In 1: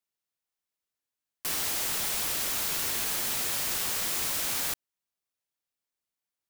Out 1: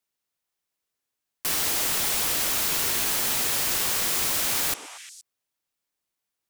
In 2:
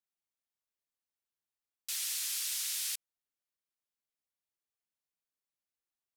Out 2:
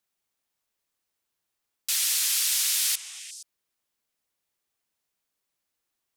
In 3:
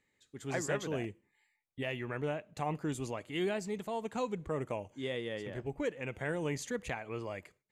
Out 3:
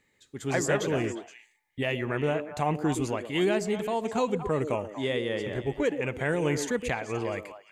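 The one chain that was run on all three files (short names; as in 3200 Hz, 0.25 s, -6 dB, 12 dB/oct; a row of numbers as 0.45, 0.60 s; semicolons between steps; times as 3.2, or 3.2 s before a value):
delay with a stepping band-pass 0.118 s, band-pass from 360 Hz, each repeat 1.4 oct, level -5 dB; normalise peaks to -12 dBFS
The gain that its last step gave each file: +5.0, +11.0, +8.0 dB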